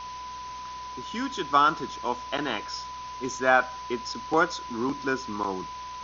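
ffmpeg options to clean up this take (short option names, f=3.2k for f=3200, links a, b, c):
-af "bandreject=f=62.5:t=h:w=4,bandreject=f=125:t=h:w=4,bandreject=f=187.5:t=h:w=4,bandreject=f=250:t=h:w=4,bandreject=f=1k:w=30,afftdn=nr=30:nf=-39"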